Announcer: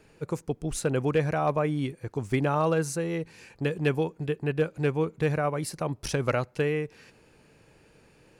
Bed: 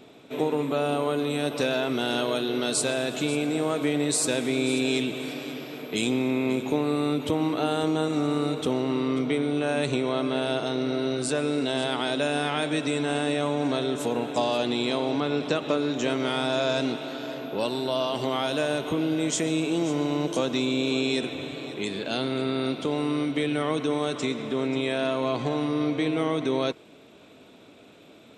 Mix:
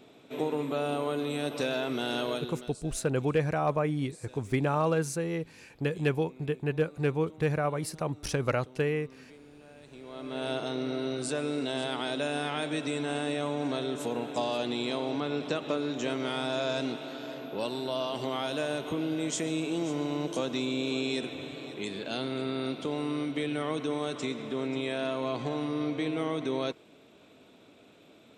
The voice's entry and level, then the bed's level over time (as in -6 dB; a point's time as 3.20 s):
2.20 s, -2.0 dB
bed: 2.33 s -5 dB
2.84 s -27.5 dB
9.82 s -27.5 dB
10.46 s -5.5 dB